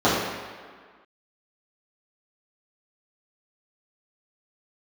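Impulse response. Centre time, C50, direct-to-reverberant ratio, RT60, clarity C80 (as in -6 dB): 86 ms, 0.0 dB, -11.5 dB, 1.7 s, 2.5 dB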